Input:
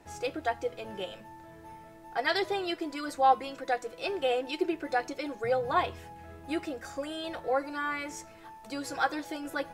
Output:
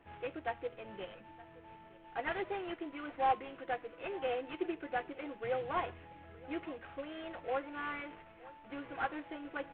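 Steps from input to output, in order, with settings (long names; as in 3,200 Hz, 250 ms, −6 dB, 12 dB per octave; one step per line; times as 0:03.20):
variable-slope delta modulation 16 kbit/s
single-tap delay 921 ms −20.5 dB
level −7 dB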